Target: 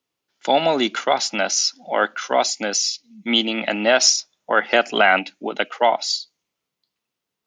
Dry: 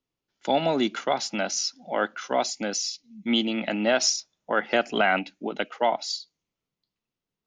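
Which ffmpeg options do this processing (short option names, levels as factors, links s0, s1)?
-af "highpass=54,lowshelf=f=280:g=-11.5,volume=2.51"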